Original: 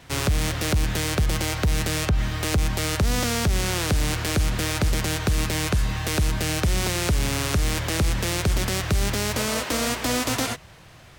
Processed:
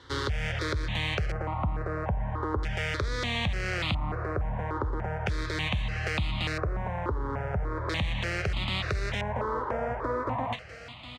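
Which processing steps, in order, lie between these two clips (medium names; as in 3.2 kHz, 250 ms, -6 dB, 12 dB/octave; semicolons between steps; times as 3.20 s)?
tracing distortion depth 0.042 ms; delay 991 ms -18.5 dB; compression, threshold -23 dBFS, peak gain reduction 6.5 dB; high-pass 49 Hz; de-hum 148.8 Hz, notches 39; LFO low-pass square 0.38 Hz 990–3600 Hz; stepped phaser 3.4 Hz 680–1600 Hz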